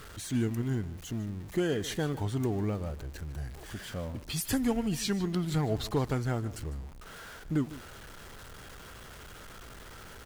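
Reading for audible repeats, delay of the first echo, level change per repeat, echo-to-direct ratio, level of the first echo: 1, 0.151 s, no steady repeat, -16.5 dB, -16.5 dB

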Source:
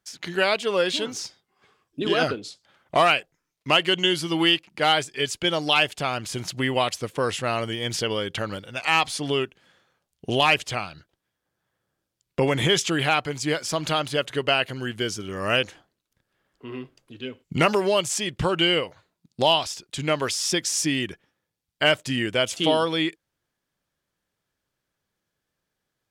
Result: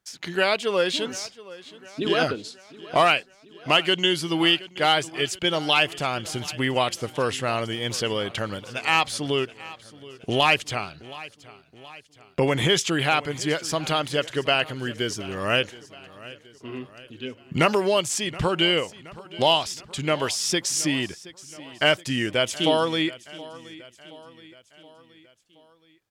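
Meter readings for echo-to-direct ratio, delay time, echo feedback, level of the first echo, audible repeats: -17.5 dB, 0.723 s, 53%, -19.0 dB, 3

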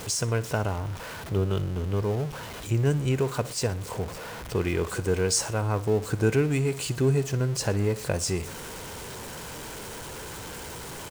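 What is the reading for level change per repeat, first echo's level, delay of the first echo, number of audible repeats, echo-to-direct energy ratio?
-6.0 dB, -17.5 dB, 60 ms, 2, -16.5 dB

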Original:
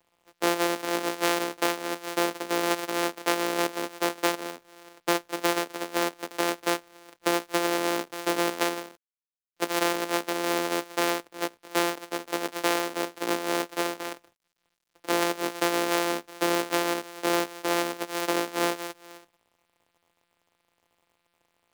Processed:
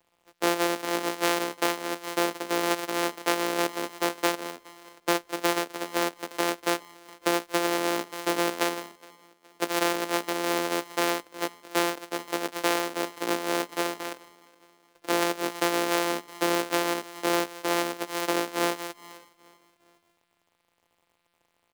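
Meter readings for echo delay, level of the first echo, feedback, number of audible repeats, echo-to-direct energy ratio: 0.417 s, -24.0 dB, 47%, 2, -23.0 dB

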